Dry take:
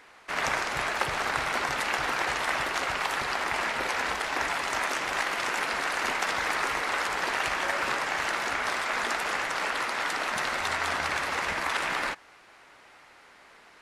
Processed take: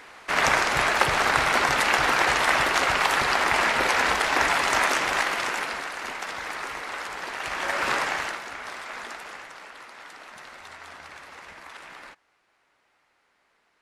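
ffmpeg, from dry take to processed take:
-af "volume=6.68,afade=t=out:st=4.82:d=1.09:silence=0.251189,afade=t=in:st=7.38:d=0.6:silence=0.334965,afade=t=out:st=7.98:d=0.44:silence=0.251189,afade=t=out:st=8.96:d=0.69:silence=0.446684"

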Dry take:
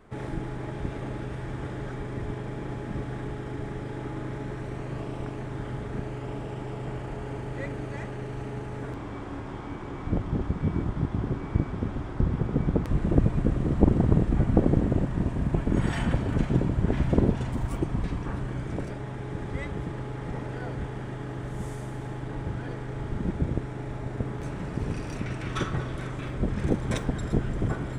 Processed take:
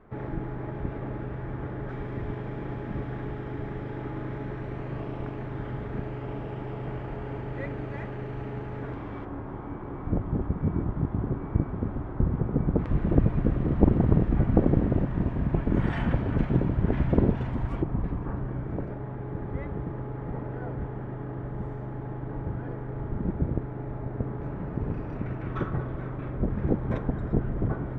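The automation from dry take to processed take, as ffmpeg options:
-af "asetnsamples=n=441:p=0,asendcmd='1.89 lowpass f 2700;9.25 lowpass f 1400;12.79 lowpass f 2500;17.82 lowpass f 1300',lowpass=1800"

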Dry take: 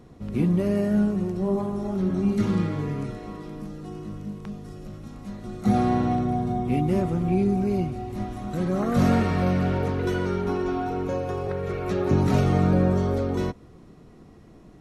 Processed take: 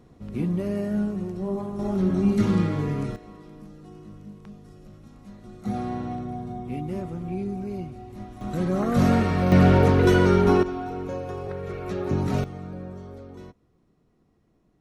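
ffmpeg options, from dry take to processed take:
-af "asetnsamples=n=441:p=0,asendcmd='1.79 volume volume 2dB;3.16 volume volume -8dB;8.41 volume volume 0.5dB;9.52 volume volume 8dB;10.63 volume volume -4dB;12.44 volume volume -16.5dB',volume=0.631"

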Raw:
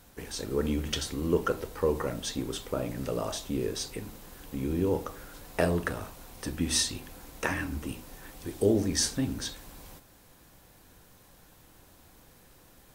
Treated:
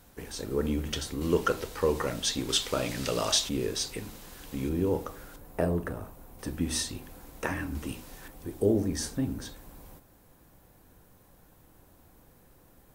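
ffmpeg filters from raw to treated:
-af "asetnsamples=n=441:p=0,asendcmd='1.21 equalizer g 7;2.49 equalizer g 14;3.49 equalizer g 4;4.69 equalizer g -2.5;5.36 equalizer g -14;6.39 equalizer g -5.5;7.75 equalizer g 1.5;8.28 equalizer g -9',equalizer=f=4300:t=o:w=2.9:g=-2.5"

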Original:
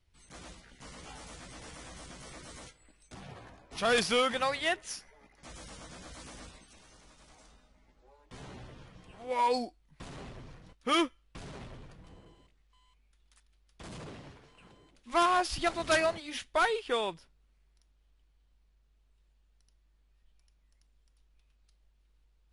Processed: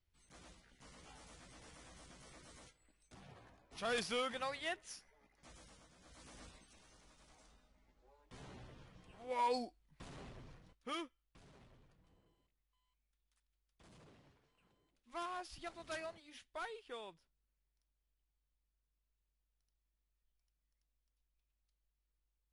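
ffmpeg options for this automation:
-af "volume=1.06,afade=t=out:st=5.48:d=0.47:silence=0.398107,afade=t=in:st=5.95:d=0.52:silence=0.266073,afade=t=out:st=10.52:d=0.49:silence=0.298538"

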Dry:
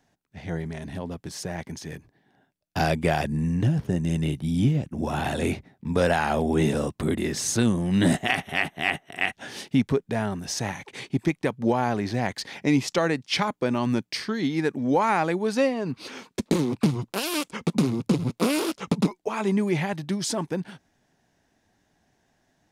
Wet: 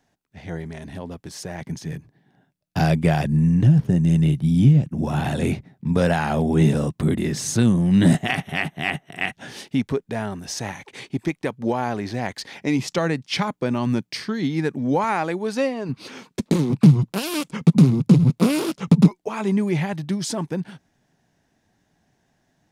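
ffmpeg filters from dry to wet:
-af "asetnsamples=n=441:p=0,asendcmd='1.61 equalizer g 9.5;9.52 equalizer g -1.5;12.79 equalizer g 6;15.04 equalizer g -1;15.89 equalizer g 7;16.7 equalizer g 14.5;19.08 equalizer g 5',equalizer=f=150:t=o:w=1.1:g=-1"

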